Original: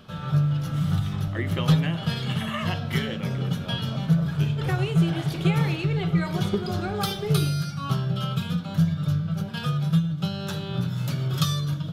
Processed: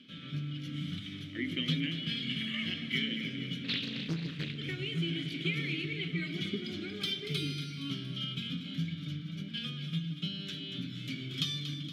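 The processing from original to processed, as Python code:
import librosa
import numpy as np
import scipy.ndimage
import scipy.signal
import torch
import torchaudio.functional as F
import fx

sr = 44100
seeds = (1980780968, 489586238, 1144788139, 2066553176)

p1 = fx.vowel_filter(x, sr, vowel='i')
p2 = fx.high_shelf(p1, sr, hz=2200.0, db=10.5)
p3 = p2 + fx.echo_split(p2, sr, split_hz=790.0, low_ms=138, high_ms=234, feedback_pct=52, wet_db=-10.0, dry=0)
p4 = fx.doppler_dist(p3, sr, depth_ms=0.87, at=(3.64, 4.58))
y = p4 * librosa.db_to_amplitude(3.5)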